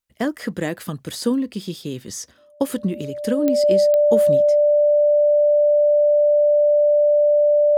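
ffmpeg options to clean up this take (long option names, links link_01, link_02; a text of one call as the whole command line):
ffmpeg -i in.wav -af "adeclick=threshold=4,bandreject=frequency=590:width=30" out.wav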